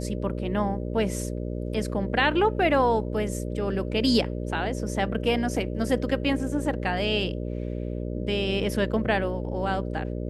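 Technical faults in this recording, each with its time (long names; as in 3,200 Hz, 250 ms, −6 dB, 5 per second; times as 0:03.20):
mains buzz 60 Hz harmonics 10 −31 dBFS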